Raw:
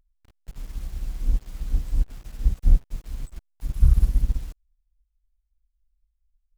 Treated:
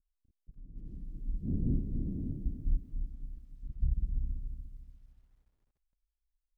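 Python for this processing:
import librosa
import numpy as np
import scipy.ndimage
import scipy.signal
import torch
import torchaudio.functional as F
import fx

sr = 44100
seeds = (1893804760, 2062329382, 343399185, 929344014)

y = fx.dmg_wind(x, sr, seeds[0], corner_hz=190.0, level_db=-25.0, at=(0.64, 2.43), fade=0.02)
y = fx.ladder_lowpass(y, sr, hz=350.0, resonance_pct=25)
y = fx.echo_crushed(y, sr, ms=292, feedback_pct=35, bits=11, wet_db=-7.5)
y = F.gain(torch.from_numpy(y), -8.5).numpy()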